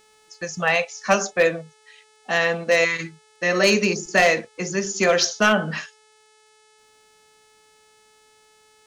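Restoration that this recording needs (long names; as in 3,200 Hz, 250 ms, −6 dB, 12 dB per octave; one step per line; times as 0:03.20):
clipped peaks rebuilt −9.5 dBFS
click removal
hum removal 431.8 Hz, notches 23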